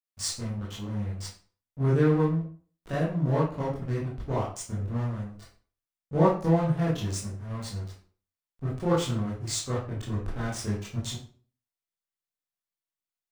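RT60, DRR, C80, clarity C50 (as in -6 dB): 0.45 s, -8.5 dB, 9.5 dB, 4.5 dB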